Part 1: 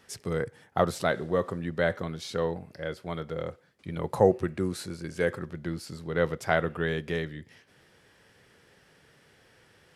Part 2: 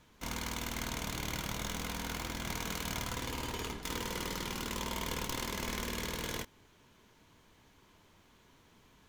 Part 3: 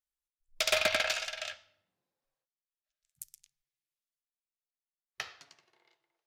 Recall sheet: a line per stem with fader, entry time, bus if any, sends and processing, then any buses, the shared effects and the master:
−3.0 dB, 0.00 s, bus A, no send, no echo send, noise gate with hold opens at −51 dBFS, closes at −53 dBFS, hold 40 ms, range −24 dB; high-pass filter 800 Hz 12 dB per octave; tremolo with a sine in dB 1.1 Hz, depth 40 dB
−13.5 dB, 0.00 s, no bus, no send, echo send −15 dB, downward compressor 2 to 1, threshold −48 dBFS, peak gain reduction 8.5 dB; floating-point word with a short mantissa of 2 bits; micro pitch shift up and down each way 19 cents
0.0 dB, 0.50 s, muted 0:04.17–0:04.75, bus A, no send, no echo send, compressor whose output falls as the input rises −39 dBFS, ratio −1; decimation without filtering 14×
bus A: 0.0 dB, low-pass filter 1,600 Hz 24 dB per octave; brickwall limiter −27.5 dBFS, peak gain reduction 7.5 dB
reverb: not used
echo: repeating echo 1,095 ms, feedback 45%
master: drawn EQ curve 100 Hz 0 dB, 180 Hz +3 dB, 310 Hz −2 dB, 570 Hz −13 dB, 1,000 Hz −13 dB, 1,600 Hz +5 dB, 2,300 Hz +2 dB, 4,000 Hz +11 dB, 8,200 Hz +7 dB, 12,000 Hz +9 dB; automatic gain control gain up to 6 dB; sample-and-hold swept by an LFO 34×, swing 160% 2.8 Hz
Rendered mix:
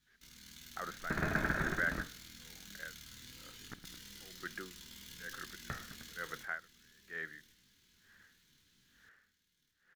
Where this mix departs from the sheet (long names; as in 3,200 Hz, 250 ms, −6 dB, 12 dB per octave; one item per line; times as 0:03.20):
stem 3: missing compressor whose output falls as the input rises −39 dBFS, ratio −1
master: missing sample-and-hold swept by an LFO 34×, swing 160% 2.8 Hz